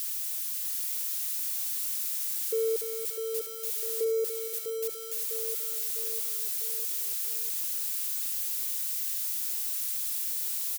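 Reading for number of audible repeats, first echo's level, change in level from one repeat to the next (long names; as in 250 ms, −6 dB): 5, −5.5 dB, −5.5 dB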